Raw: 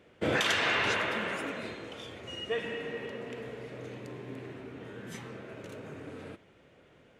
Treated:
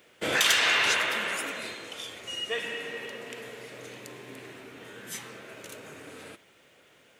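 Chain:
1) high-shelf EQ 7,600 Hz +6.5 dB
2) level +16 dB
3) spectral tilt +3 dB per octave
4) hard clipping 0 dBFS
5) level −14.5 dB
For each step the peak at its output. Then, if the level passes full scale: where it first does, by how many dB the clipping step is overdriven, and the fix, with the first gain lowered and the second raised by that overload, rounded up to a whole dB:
−14.0, +2.0, +8.5, 0.0, −14.5 dBFS
step 2, 8.5 dB
step 2 +7 dB, step 5 −5.5 dB

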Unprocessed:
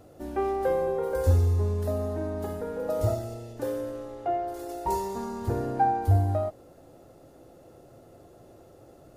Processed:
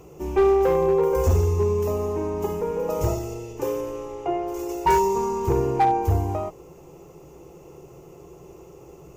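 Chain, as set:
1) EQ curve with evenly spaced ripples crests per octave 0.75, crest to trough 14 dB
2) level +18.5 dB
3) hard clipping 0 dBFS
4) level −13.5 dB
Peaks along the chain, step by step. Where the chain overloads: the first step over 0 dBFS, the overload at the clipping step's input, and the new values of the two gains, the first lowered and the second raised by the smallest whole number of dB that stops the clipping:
−12.0, +6.5, 0.0, −13.5 dBFS
step 2, 6.5 dB
step 2 +11.5 dB, step 4 −6.5 dB

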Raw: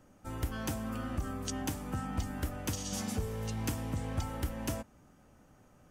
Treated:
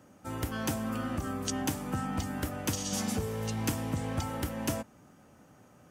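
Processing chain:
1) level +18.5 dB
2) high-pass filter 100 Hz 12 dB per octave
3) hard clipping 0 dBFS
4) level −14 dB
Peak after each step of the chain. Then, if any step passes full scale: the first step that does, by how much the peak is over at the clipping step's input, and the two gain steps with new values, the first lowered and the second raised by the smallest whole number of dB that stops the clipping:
−2.0, −1.5, −1.5, −15.5 dBFS
no step passes full scale

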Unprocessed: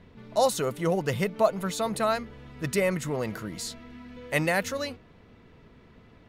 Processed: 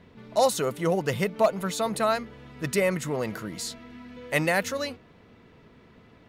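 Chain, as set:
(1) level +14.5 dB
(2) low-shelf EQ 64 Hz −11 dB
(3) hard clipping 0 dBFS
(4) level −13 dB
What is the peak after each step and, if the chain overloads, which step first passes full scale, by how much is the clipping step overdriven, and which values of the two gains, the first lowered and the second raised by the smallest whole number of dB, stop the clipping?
+5.0, +5.0, 0.0, −13.0 dBFS
step 1, 5.0 dB
step 1 +9.5 dB, step 4 −8 dB

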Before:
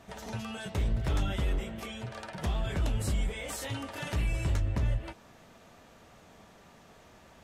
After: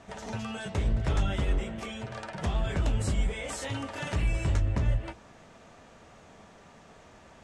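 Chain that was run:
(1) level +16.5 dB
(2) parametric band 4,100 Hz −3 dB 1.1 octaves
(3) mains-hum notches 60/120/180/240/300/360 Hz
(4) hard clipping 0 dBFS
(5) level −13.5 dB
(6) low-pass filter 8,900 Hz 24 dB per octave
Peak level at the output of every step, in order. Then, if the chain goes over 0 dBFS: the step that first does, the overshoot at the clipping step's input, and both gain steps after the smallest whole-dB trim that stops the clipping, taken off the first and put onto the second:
−3.5, −4.0, −2.5, −2.5, −16.0, −16.0 dBFS
no step passes full scale

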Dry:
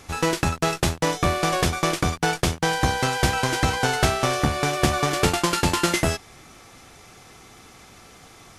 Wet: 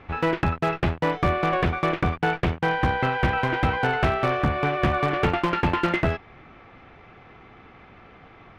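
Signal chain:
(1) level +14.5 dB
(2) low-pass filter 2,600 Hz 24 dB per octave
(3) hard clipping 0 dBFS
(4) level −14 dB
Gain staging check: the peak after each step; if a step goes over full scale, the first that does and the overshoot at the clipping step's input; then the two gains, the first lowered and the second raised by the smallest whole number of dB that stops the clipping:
+10.0, +9.0, 0.0, −14.0 dBFS
step 1, 9.0 dB
step 1 +5.5 dB, step 4 −5 dB

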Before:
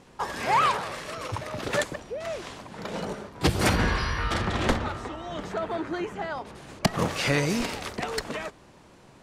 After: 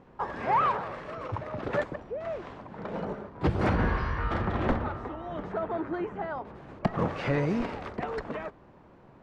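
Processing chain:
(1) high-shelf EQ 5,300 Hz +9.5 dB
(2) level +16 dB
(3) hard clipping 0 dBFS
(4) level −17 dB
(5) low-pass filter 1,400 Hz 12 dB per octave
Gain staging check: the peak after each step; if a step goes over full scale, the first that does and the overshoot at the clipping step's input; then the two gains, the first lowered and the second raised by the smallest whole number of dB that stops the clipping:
−7.5, +8.5, 0.0, −17.0, −16.5 dBFS
step 2, 8.5 dB
step 2 +7 dB, step 4 −8 dB

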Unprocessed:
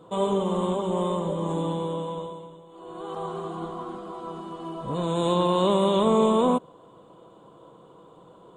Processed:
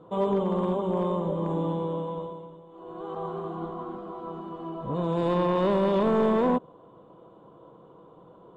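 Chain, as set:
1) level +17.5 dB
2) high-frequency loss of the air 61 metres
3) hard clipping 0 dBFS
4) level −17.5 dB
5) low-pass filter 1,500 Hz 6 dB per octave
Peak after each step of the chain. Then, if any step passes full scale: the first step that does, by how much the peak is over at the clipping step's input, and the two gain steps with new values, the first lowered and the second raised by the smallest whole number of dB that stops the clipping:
+9.5, +9.0, 0.0, −17.5, −17.5 dBFS
step 1, 9.0 dB
step 1 +8.5 dB, step 4 −8.5 dB

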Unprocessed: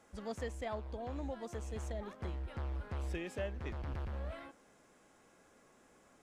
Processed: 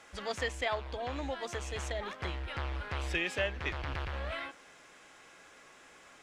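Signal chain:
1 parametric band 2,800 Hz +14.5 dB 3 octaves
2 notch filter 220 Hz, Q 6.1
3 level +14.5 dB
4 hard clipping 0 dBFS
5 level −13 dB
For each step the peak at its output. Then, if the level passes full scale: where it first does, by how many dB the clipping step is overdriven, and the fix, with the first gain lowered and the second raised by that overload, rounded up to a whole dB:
−20.0, −20.0, −5.5, −5.5, −18.5 dBFS
no step passes full scale

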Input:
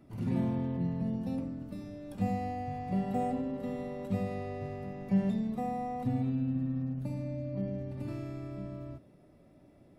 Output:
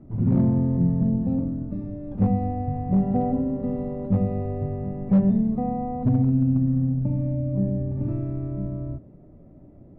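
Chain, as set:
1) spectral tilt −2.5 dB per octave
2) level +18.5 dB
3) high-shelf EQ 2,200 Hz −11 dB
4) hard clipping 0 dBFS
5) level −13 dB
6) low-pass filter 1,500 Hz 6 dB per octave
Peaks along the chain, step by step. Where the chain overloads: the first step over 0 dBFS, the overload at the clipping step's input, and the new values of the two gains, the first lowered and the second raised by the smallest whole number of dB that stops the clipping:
−12.5, +6.0, +6.0, 0.0, −13.0, −13.0 dBFS
step 2, 6.0 dB
step 2 +12.5 dB, step 5 −7 dB

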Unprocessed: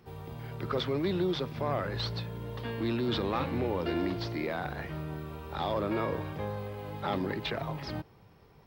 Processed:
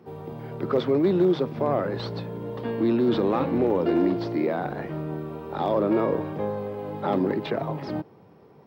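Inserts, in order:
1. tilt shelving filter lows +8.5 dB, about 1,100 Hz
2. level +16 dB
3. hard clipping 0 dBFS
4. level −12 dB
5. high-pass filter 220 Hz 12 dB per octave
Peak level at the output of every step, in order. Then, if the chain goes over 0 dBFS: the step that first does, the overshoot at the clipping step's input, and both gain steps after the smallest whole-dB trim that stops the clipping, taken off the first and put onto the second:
−13.0, +3.0, 0.0, −12.0, −11.5 dBFS
step 2, 3.0 dB
step 2 +13 dB, step 4 −9 dB

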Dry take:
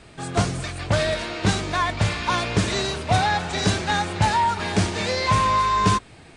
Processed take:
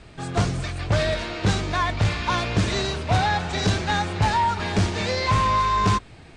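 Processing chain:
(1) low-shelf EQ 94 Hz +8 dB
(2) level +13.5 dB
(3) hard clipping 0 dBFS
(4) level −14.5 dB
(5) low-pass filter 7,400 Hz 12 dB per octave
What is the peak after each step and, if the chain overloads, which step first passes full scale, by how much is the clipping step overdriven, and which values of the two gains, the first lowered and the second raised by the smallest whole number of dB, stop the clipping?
−5.5, +8.0, 0.0, −14.5, −14.0 dBFS
step 2, 8.0 dB
step 2 +5.5 dB, step 4 −6.5 dB

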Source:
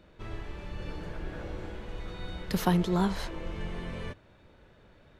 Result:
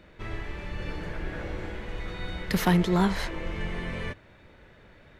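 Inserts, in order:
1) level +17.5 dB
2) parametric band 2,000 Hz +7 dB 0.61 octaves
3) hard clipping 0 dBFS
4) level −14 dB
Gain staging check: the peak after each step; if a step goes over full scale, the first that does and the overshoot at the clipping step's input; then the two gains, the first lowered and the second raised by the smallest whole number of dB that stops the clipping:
+7.0, +7.5, 0.0, −14.0 dBFS
step 1, 7.5 dB
step 1 +9.5 dB, step 4 −6 dB

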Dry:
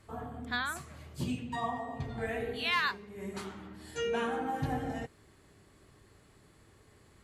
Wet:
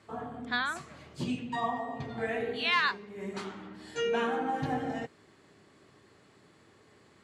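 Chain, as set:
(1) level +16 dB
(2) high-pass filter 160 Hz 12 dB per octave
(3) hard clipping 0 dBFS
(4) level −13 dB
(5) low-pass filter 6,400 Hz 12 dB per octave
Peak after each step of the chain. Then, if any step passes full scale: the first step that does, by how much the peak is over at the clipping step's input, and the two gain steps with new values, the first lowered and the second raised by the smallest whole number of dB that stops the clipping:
−2.5, −2.0, −2.0, −15.0, −15.0 dBFS
no step passes full scale

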